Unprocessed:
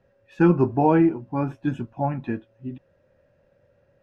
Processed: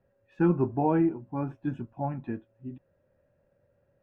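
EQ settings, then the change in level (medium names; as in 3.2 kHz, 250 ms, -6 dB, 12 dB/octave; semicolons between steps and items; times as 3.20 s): peaking EQ 510 Hz -2 dB 0.26 oct; treble shelf 2.7 kHz -12 dB; -6.0 dB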